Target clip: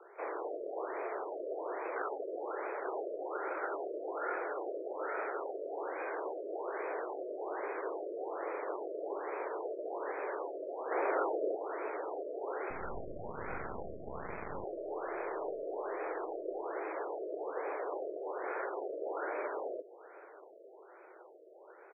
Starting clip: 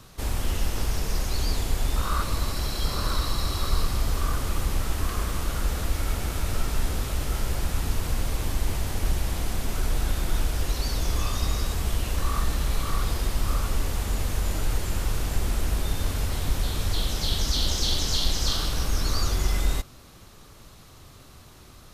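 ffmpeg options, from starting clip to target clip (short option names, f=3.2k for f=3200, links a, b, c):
-filter_complex "[0:a]highpass=f=160:t=q:w=0.5412,highpass=f=160:t=q:w=1.307,lowpass=f=3.3k:t=q:w=0.5176,lowpass=f=3.3k:t=q:w=0.7071,lowpass=f=3.3k:t=q:w=1.932,afreqshift=230,asettb=1/sr,asplit=3[a][b][c];[a]atrim=end=10.914[d];[b]atrim=start=10.91:end=11.55,asetpts=PTS-STARTPTS,afade=t=in:d=0.004:c=qsin,afade=t=out:st=0.636:d=0.004:c=qsin,acontrast=56[e];[c]atrim=start=11.546[f];[d][e]acrossfade=d=0.004:c1=hsin:c2=qsin[g];[g][f]acrossfade=d=0.004:c1=qsin:c2=hsin,asettb=1/sr,asplit=3[h][i][j];[h]atrim=end=12.704[k];[i]atrim=start=12.7:end=14.64,asetpts=PTS-STARTPTS,afade=t=in:d=0.004:c=qsin,afade=t=out:st=1.936:d=0.004:c=qsin,acrusher=bits=3:dc=4:mix=0:aa=0.000001[l];[j]atrim=start=14.636[m];[k][l]acrossfade=d=0.004:c1=hsin:c2=qsin[n];[n][m]acrossfade=d=0.004:c1=qsin:c2=hsin,highshelf=f=2.1k:g=-9.5,aecho=1:1:991|1982|2973:0.0944|0.034|0.0122,afftfilt=real='re*lt(b*sr/1024,660*pow(2600/660,0.5+0.5*sin(2*PI*1.2*pts/sr)))':imag='im*lt(b*sr/1024,660*pow(2600/660,0.5+0.5*sin(2*PI*1.2*pts/sr)))':win_size=1024:overlap=0.75"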